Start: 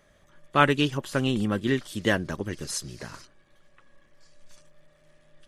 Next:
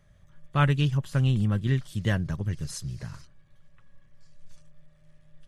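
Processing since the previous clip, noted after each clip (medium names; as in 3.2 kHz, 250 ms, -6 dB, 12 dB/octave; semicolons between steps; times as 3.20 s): resonant low shelf 200 Hz +12.5 dB, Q 1.5; trim -6.5 dB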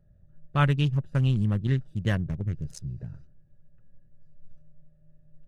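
local Wiener filter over 41 samples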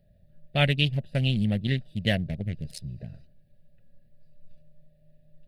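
FFT filter 140 Hz 0 dB, 220 Hz +6 dB, 340 Hz -1 dB, 670 Hz +11 dB, 1.1 kHz -15 dB, 2 kHz +11 dB, 4.4 kHz +15 dB, 6.3 kHz -3 dB, 9.3 kHz +9 dB; trim -2.5 dB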